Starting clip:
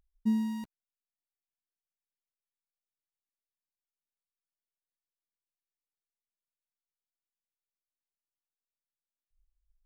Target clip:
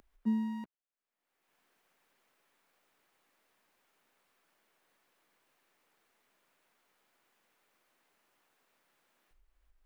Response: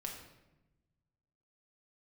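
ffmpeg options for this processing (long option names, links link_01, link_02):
-filter_complex "[0:a]acrossover=split=190 2600:gain=0.178 1 0.2[link_01][link_02][link_03];[link_01][link_02][link_03]amix=inputs=3:normalize=0,acompressor=mode=upward:threshold=-51dB:ratio=2.5"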